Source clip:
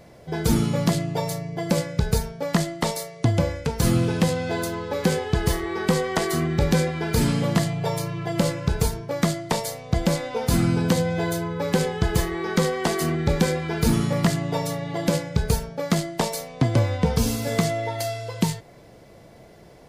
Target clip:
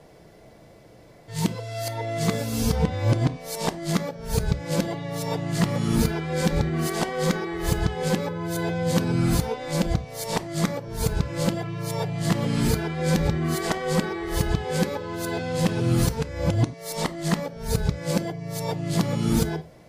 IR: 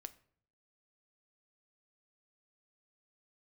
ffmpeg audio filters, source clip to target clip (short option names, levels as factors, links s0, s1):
-filter_complex "[0:a]areverse[s0];[1:a]atrim=start_sample=2205,atrim=end_sample=3969,asetrate=38808,aresample=44100[s1];[s0][s1]afir=irnorm=-1:irlink=0,volume=1.41"